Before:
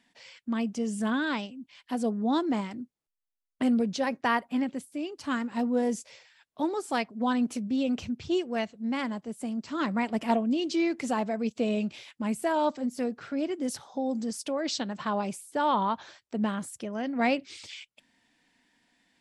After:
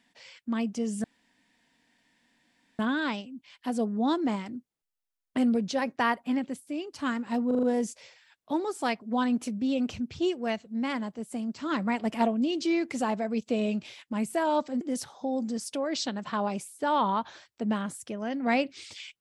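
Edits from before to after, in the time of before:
0:01.04: splice in room tone 1.75 s
0:05.72: stutter 0.04 s, 5 plays
0:12.90–0:13.54: remove

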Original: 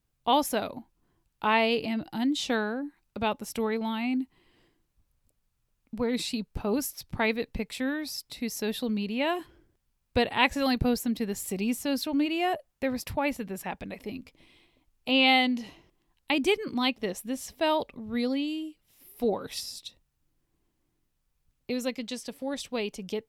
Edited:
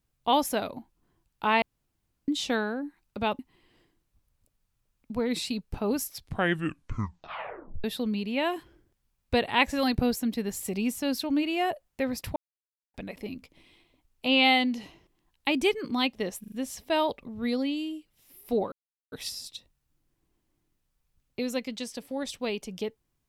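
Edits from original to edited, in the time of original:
0:01.62–0:02.28: fill with room tone
0:03.39–0:04.22: remove
0:06.94: tape stop 1.73 s
0:13.19–0:13.77: silence
0:17.23: stutter 0.04 s, 4 plays
0:19.43: splice in silence 0.40 s

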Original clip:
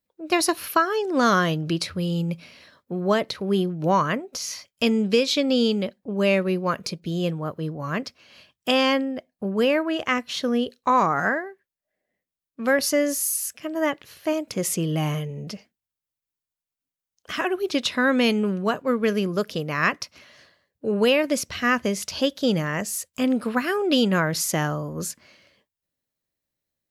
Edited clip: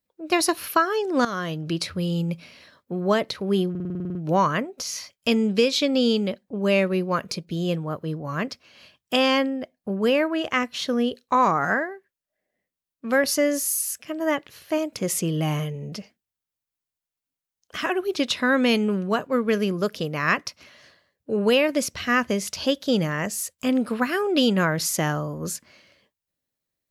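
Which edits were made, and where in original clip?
0:01.25–0:01.87: fade in, from −14.5 dB
0:03.70: stutter 0.05 s, 10 plays

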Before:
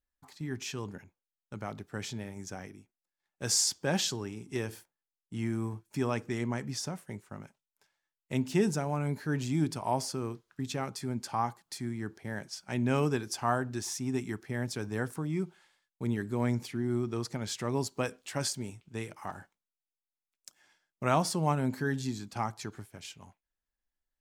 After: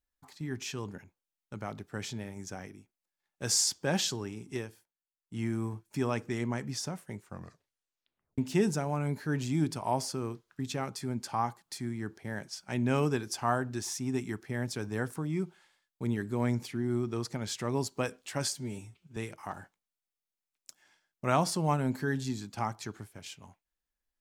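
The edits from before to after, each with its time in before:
0:04.51–0:05.39: duck −12.5 dB, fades 0.22 s
0:07.24: tape stop 1.14 s
0:18.52–0:18.95: time-stretch 1.5×

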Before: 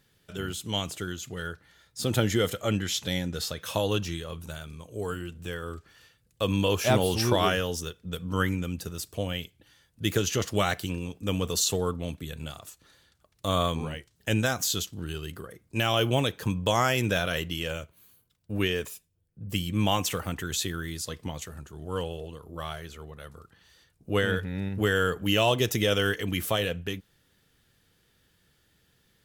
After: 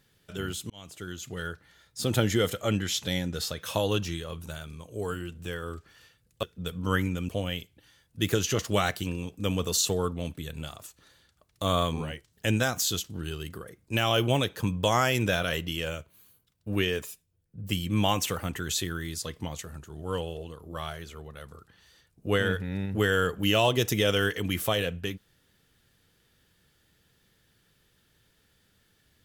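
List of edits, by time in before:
0:00.70–0:01.32: fade in
0:06.43–0:07.90: remove
0:08.76–0:09.12: remove

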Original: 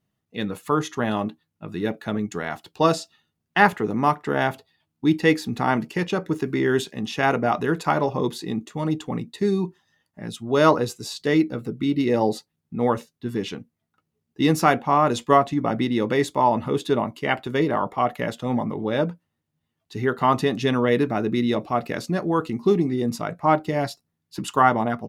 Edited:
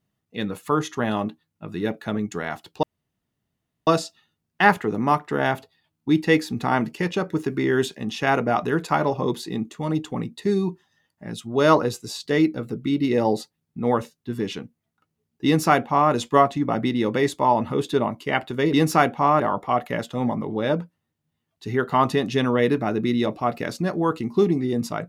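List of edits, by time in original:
0:02.83: splice in room tone 1.04 s
0:14.41–0:15.08: duplicate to 0:17.69

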